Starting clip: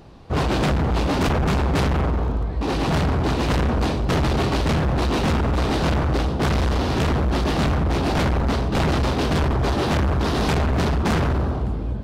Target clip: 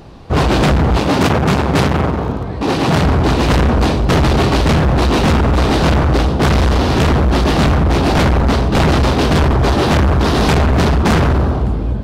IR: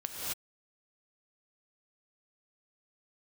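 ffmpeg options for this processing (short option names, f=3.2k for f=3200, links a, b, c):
-filter_complex "[0:a]asettb=1/sr,asplit=3[a][b][c];[a]atrim=end=0.974[d];[b]atrim=start=0.97:end=3.05,asetpts=PTS-STARTPTS,afade=t=in:d=0.004:c=qsin,afade=t=out:st=2.076:d=0.004:c=qsin,highpass=f=81:w=0.5412,highpass=f=81:w=1.3066[e];[c]atrim=start=3.046[f];[d][e]acrossfade=d=0.004:c1=hsin:c2=qsin[g];[g][f]acrossfade=d=0.004:c1=qsin:c2=hsin,volume=8dB"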